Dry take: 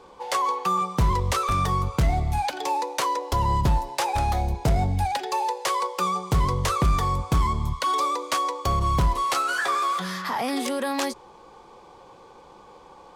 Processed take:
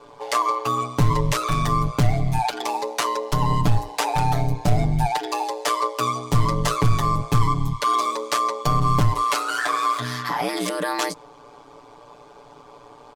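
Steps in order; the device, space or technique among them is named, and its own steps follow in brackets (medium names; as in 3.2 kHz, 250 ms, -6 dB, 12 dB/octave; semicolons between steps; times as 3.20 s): ring-modulated robot voice (ring modulator 59 Hz; comb 6.9 ms, depth 96%); trim +2.5 dB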